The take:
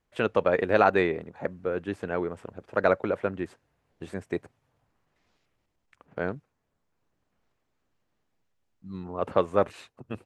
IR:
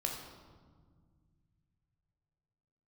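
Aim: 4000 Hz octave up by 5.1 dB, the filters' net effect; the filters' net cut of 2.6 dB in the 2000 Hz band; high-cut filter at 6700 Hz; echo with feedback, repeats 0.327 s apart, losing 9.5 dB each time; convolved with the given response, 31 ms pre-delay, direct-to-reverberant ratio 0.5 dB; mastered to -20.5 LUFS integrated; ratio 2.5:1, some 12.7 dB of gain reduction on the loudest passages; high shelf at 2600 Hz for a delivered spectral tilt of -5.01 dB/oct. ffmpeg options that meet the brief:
-filter_complex "[0:a]lowpass=6.7k,equalizer=f=2k:t=o:g=-6.5,highshelf=f=2.6k:g=3.5,equalizer=f=4k:t=o:g=6,acompressor=threshold=-36dB:ratio=2.5,aecho=1:1:327|654|981|1308:0.335|0.111|0.0365|0.012,asplit=2[a][b];[1:a]atrim=start_sample=2205,adelay=31[c];[b][c]afir=irnorm=-1:irlink=0,volume=-3dB[d];[a][d]amix=inputs=2:normalize=0,volume=15dB"

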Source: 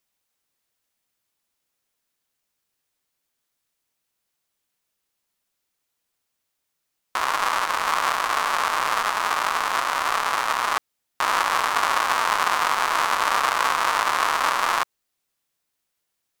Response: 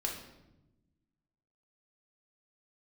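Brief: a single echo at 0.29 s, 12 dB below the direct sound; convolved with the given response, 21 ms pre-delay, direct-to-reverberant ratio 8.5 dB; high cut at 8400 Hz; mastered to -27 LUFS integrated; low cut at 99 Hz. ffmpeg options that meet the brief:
-filter_complex "[0:a]highpass=99,lowpass=8.4k,aecho=1:1:290:0.251,asplit=2[a][b];[1:a]atrim=start_sample=2205,adelay=21[c];[b][c]afir=irnorm=-1:irlink=0,volume=-11.5dB[d];[a][d]amix=inputs=2:normalize=0,volume=-6dB"

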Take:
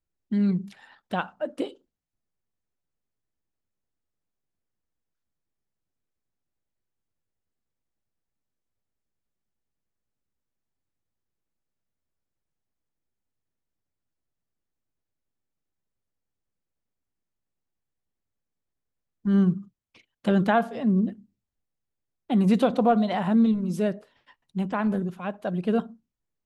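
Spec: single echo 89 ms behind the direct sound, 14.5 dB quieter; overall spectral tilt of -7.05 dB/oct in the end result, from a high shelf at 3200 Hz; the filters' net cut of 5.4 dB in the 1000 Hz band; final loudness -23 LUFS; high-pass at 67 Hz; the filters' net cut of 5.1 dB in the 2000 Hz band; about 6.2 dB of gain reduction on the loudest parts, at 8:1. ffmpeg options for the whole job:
-af "highpass=67,equalizer=f=1k:t=o:g=-8.5,equalizer=f=2k:t=o:g=-4.5,highshelf=f=3.2k:g=4.5,acompressor=threshold=-23dB:ratio=8,aecho=1:1:89:0.188,volume=7dB"

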